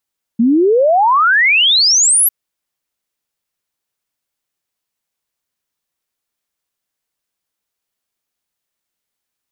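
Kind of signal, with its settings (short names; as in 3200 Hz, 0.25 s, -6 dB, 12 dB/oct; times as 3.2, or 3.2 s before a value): log sweep 220 Hz -> 12000 Hz 1.90 s -8 dBFS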